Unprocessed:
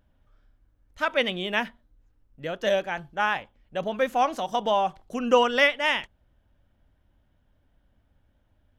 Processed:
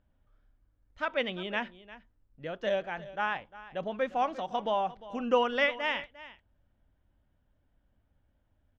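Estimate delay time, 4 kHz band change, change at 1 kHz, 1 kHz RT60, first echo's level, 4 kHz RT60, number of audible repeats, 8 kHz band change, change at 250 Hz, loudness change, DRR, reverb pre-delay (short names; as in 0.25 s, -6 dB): 0.351 s, -8.5 dB, -6.0 dB, none, -17.0 dB, none, 1, under -15 dB, -5.5 dB, -6.5 dB, none, none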